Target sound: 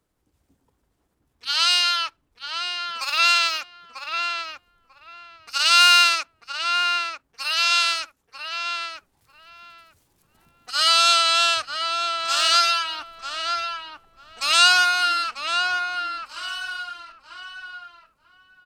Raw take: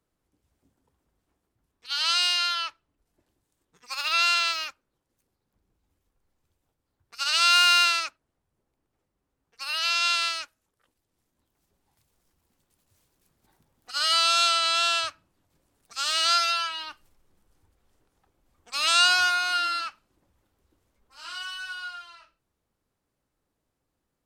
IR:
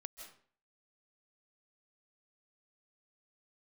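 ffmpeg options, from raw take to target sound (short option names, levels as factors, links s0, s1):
-filter_complex "[0:a]atempo=1.3,asplit=2[s0][s1];[s1]adelay=943,lowpass=f=2000:p=1,volume=0.631,asplit=2[s2][s3];[s3]adelay=943,lowpass=f=2000:p=1,volume=0.19,asplit=2[s4][s5];[s5]adelay=943,lowpass=f=2000:p=1,volume=0.19[s6];[s0][s2][s4][s6]amix=inputs=4:normalize=0,volume=1.78"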